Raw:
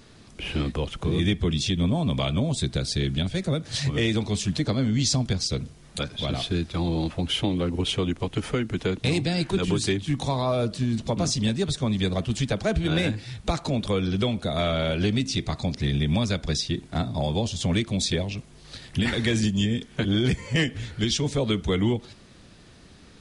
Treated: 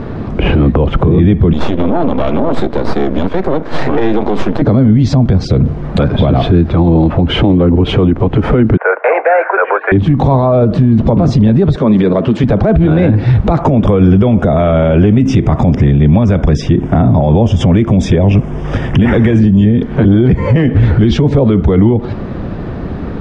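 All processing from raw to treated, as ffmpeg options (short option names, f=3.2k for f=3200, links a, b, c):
-filter_complex "[0:a]asettb=1/sr,asplit=3[a][b][c];[a]atrim=end=1.534[d];[b]atrim=start=1.53:end=4.62,asetpts=PTS-STARTPTS,afade=t=in:d=0.004:c=qsin,afade=t=out:st=3.086:d=0.004:c=qsin,highpass=f=260:w=0.5412,highpass=f=260:w=1.3066,aeval=exprs='max(val(0),0)':c=same[e];[c]atrim=start=4.616[f];[d][e]acrossfade=d=0.004:c1=hsin:c2=qsin[g];[g][f]acrossfade=d=0.004:c1=qsin:c2=hsin,asettb=1/sr,asplit=3[h][i][j];[h]atrim=end=8.774[k];[i]atrim=start=8.77:end=9.92,asetpts=PTS-STARTPTS,afade=t=in:d=0.004:c=qsin,afade=t=out:st=1.146:d=0.004:c=qsin,asuperpass=centerf=1100:order=12:qfactor=0.6,equalizer=f=1.5k:t=o:w=0.28:g=10.5[l];[j]atrim=start=9.916[m];[k][l]acrossfade=d=0.004:c1=hsin:c2=qsin[n];[n][m]acrossfade=d=0.004:c1=qsin:c2=hsin,asettb=1/sr,asplit=3[o][p][q];[o]atrim=end=11.764[r];[p]atrim=start=11.76:end=12.44,asetpts=PTS-STARTPTS,afade=t=in:d=0.004:c=qsin,afade=t=out:st=0.676:d=0.004:c=qsin,highpass=250,bandreject=f=750:w=7,acompressor=threshold=-35dB:ratio=4:attack=3.2:release=140:knee=1:detection=peak[s];[q]atrim=start=12.436[t];[r][s]acrossfade=d=0.004:c1=hsin:c2=qsin[u];[u][t]acrossfade=d=0.004:c1=qsin:c2=hsin,asettb=1/sr,asplit=3[v][w][x];[v]atrim=end=13.624[y];[w]atrim=start=13.62:end=19.39,asetpts=PTS-STARTPTS,afade=t=in:d=0.004:c=qsin,afade=t=out:st=5.766:d=0.004:c=qsin,asuperstop=centerf=4200:order=4:qfactor=2.6,highshelf=f=4k:g=9.5[z];[x]atrim=start=19.386[aa];[y][z]acrossfade=d=0.004:c1=hsin:c2=qsin[ab];[ab][aa]acrossfade=d=0.004:c1=qsin:c2=hsin,lowpass=1k,acompressor=threshold=-30dB:ratio=4,alimiter=level_in=32dB:limit=-1dB:release=50:level=0:latency=1,volume=-1dB"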